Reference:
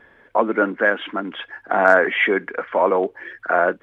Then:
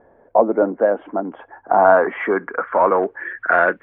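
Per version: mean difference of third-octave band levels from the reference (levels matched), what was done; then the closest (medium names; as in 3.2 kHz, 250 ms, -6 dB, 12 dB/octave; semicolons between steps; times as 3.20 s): 3.5 dB: in parallel at -4 dB: hard clipper -14 dBFS, distortion -9 dB; on the sum: low-pass sweep 700 Hz -> 2 kHz, 1.06–3.79 s; trim -4 dB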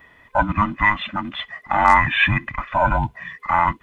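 7.5 dB: every band turned upside down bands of 500 Hz; treble shelf 3.1 kHz +9.5 dB; trim -1 dB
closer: first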